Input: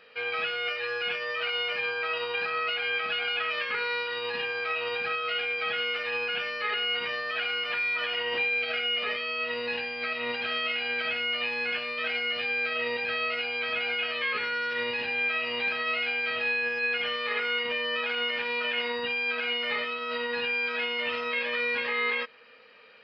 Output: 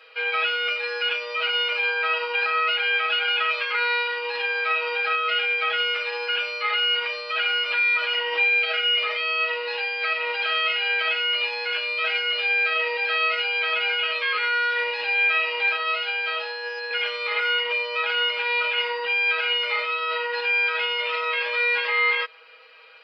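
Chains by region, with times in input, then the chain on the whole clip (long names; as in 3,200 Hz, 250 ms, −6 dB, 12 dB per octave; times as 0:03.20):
0:15.76–0:16.91: high-pass filter 400 Hz + parametric band 2,100 Hz −6.5 dB 0.7 octaves
whole clip: high-pass filter 640 Hz 12 dB per octave; notch filter 1,800 Hz, Q 10; comb filter 6.2 ms, depth 85%; level +3.5 dB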